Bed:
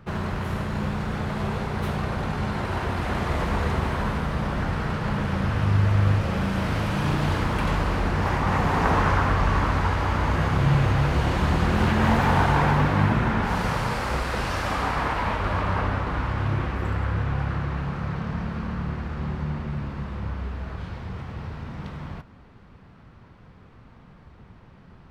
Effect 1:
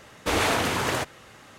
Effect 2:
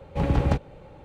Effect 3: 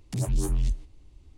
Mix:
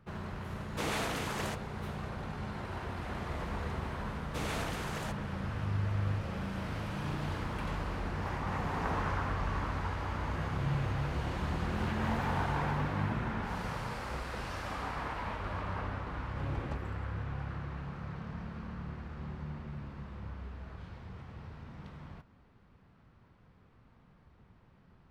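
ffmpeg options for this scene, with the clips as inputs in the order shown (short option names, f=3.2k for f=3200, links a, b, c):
-filter_complex "[1:a]asplit=2[a][b];[0:a]volume=-12.5dB[c];[a]highpass=160,atrim=end=1.58,asetpts=PTS-STARTPTS,volume=-11.5dB,afade=t=in:d=0.004:c=hsin,afade=t=out:st=1.576:d=0.004:c=hsin,adelay=510[d];[b]atrim=end=1.58,asetpts=PTS-STARTPTS,volume=-15dB,afade=t=in:d=0.004:c=hsin,afade=t=out:st=1.576:d=0.004:c=hsin,adelay=4080[e];[2:a]atrim=end=1.04,asetpts=PTS-STARTPTS,volume=-17.5dB,afade=t=in:d=0.004:c=hsin,afade=t=out:st=1.036:d=0.004:c=hsin,adelay=714420S[f];[c][d][e][f]amix=inputs=4:normalize=0"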